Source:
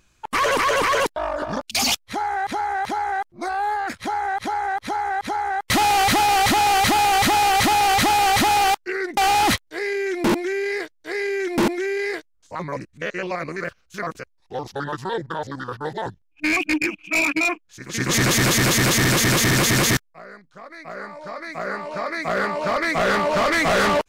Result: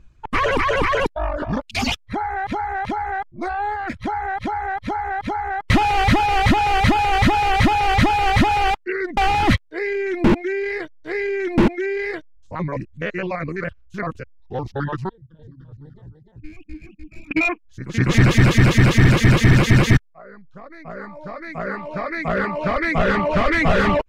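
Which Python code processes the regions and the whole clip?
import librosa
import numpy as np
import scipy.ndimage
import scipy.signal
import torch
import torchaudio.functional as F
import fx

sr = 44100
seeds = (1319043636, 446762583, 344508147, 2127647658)

y = fx.chain(x, sr, fx.tone_stack(knobs='10-0-1'),
    fx.echo_single(ms=300, db=-3.5), at=(15.09, 17.31))
y = fx.riaa(y, sr, side='playback')
y = fx.dereverb_blind(y, sr, rt60_s=0.62)
y = fx.dynamic_eq(y, sr, hz=2400.0, q=1.0, threshold_db=-40.0, ratio=4.0, max_db=6)
y = y * 10.0 ** (-1.0 / 20.0)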